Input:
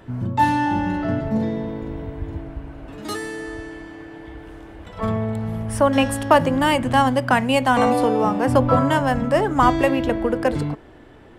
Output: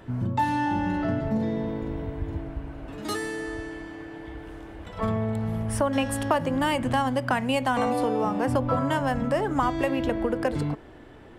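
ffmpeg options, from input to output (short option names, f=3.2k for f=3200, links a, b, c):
-af "acompressor=threshold=-21dB:ratio=3,volume=-1.5dB"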